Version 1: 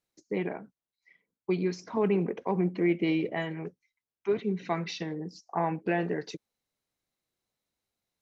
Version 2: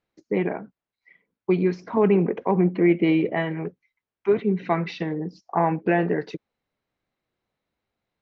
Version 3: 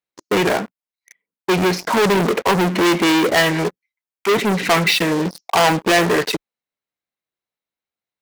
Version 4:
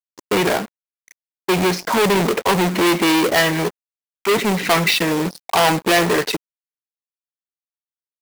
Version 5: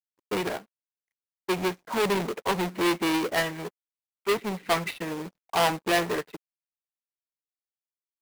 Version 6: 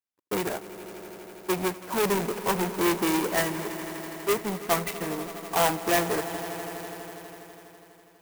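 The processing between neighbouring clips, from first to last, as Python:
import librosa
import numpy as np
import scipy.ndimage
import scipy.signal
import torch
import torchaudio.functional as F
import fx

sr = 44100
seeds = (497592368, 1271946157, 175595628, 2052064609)

y1 = scipy.signal.sosfilt(scipy.signal.butter(2, 2600.0, 'lowpass', fs=sr, output='sos'), x)
y1 = y1 * librosa.db_to_amplitude(7.5)
y2 = fx.leveller(y1, sr, passes=5)
y2 = fx.tilt_eq(y2, sr, slope=2.5)
y2 = y2 * librosa.db_to_amplitude(-1.0)
y3 = fx.quant_companded(y2, sr, bits=4)
y3 = y3 * librosa.db_to_amplitude(-1.0)
y4 = scipy.ndimage.median_filter(y3, 9, mode='constant')
y4 = fx.upward_expand(y4, sr, threshold_db=-30.0, expansion=2.5)
y4 = y4 * librosa.db_to_amplitude(-6.0)
y5 = fx.echo_swell(y4, sr, ms=82, loudest=5, wet_db=-17.5)
y5 = fx.clock_jitter(y5, sr, seeds[0], jitter_ms=0.057)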